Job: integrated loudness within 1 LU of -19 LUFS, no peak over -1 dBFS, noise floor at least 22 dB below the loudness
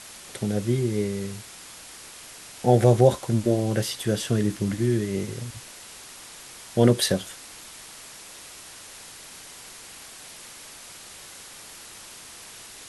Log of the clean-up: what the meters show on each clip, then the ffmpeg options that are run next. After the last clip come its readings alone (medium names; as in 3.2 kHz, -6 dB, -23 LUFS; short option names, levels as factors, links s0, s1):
noise floor -44 dBFS; noise floor target -46 dBFS; loudness -24.0 LUFS; peak level -4.5 dBFS; loudness target -19.0 LUFS
-> -af "afftdn=nr=6:nf=-44"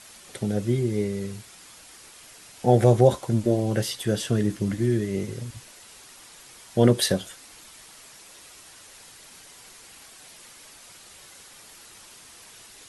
noise floor -49 dBFS; loudness -24.0 LUFS; peak level -4.5 dBFS; loudness target -19.0 LUFS
-> -af "volume=1.78,alimiter=limit=0.891:level=0:latency=1"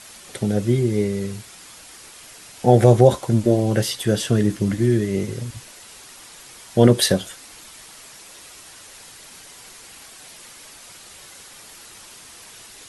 loudness -19.0 LUFS; peak level -1.0 dBFS; noise floor -44 dBFS